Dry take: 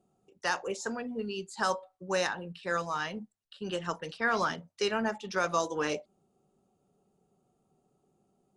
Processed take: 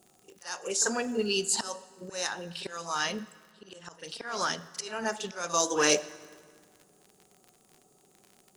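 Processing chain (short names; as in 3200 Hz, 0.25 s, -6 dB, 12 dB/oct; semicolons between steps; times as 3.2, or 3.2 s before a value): tone controls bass -6 dB, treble +14 dB; crackle 59/s -49 dBFS; auto swell 0.63 s; in parallel at -10 dB: overloaded stage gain 25 dB; on the sum: pre-echo 42 ms -14 dB; on a send at -15.5 dB: reverb RT60 1.9 s, pre-delay 4 ms; on the sum: gain +5.5 dB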